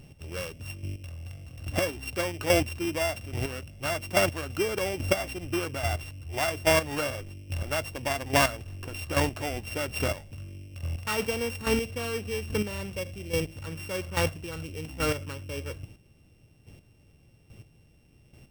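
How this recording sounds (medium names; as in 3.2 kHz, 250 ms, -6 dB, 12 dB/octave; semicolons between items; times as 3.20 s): a buzz of ramps at a fixed pitch in blocks of 16 samples; chopped level 1.2 Hz, depth 65%, duty 15%; Vorbis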